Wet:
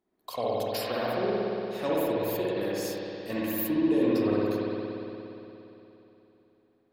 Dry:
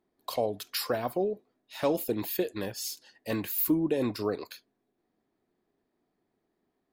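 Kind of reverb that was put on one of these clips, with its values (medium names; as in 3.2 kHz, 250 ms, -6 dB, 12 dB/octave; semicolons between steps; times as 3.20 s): spring tank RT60 3.3 s, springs 58 ms, chirp 40 ms, DRR -7 dB; trim -4.5 dB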